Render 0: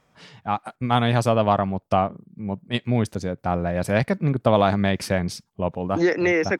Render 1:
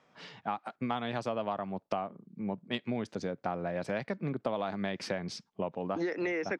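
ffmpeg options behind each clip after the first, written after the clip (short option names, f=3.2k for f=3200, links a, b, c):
-filter_complex "[0:a]acrossover=split=160 6500:gain=0.126 1 0.0631[a][b][c];[a][b][c]amix=inputs=3:normalize=0,acompressor=threshold=-29dB:ratio=6,volume=-1.5dB"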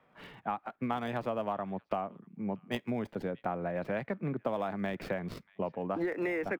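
-filter_complex "[0:a]acrossover=split=140|1200|3300[a][b][c][d];[c]aecho=1:1:635:0.0794[e];[d]acrusher=samples=42:mix=1:aa=0.000001:lfo=1:lforange=25.2:lforate=0.6[f];[a][b][e][f]amix=inputs=4:normalize=0"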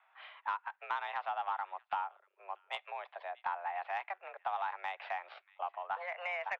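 -af "highpass=f=560:t=q:w=0.5412,highpass=f=560:t=q:w=1.307,lowpass=f=3.5k:t=q:w=0.5176,lowpass=f=3.5k:t=q:w=0.7071,lowpass=f=3.5k:t=q:w=1.932,afreqshift=180,asoftclip=type=tanh:threshold=-23dB"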